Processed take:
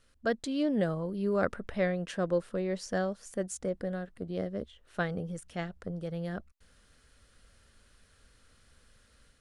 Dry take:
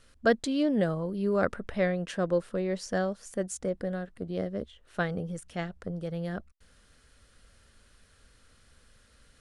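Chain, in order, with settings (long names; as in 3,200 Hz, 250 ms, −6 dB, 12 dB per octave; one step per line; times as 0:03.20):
automatic gain control gain up to 5 dB
level −7 dB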